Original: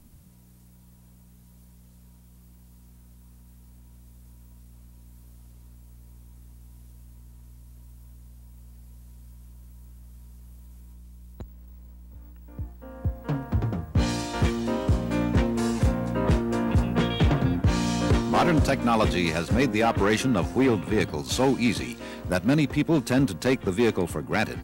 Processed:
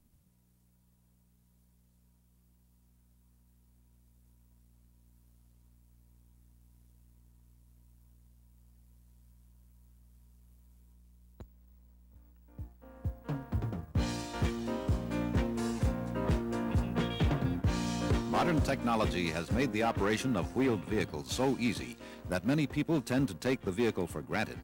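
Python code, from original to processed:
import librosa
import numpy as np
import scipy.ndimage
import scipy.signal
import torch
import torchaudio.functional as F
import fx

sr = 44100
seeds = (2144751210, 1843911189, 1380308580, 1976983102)

y = fx.law_mismatch(x, sr, coded='A')
y = y * 10.0 ** (-7.5 / 20.0)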